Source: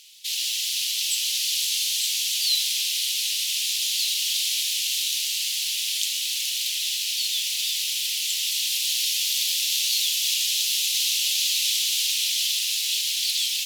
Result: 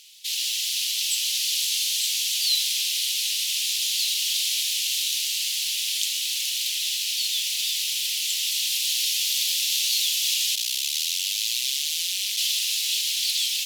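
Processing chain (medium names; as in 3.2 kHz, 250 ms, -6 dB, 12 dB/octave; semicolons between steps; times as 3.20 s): 10.55–12.36 s: ring modulator 28 Hz -> 110 Hz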